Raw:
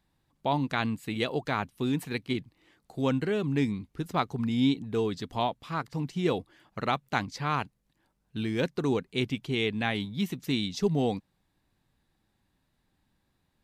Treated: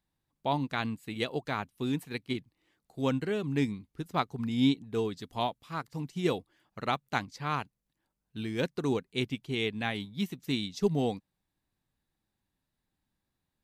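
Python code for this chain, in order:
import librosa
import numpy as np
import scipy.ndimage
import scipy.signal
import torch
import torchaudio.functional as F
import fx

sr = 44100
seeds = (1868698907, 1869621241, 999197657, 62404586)

y = fx.high_shelf(x, sr, hz=6900.0, db=fx.steps((0.0, 5.0), (5.17, 10.5), (6.35, 5.5)))
y = fx.upward_expand(y, sr, threshold_db=-41.0, expansion=1.5)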